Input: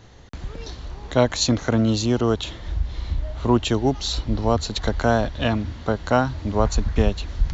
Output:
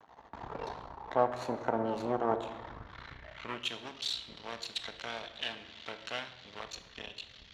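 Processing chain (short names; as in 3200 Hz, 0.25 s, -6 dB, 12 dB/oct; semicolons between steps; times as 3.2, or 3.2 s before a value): in parallel at +0.5 dB: compressor, threshold -28 dBFS, peak gain reduction 16 dB; on the sum: low shelf 92 Hz +8 dB; half-wave rectifier; on a send at -8 dB: reverb RT60 1.1 s, pre-delay 4 ms; on the sum: AGC; band-pass sweep 910 Hz -> 3300 Hz, 2.61–3.75; dynamic EQ 4200 Hz, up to -4 dB, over -49 dBFS, Q 1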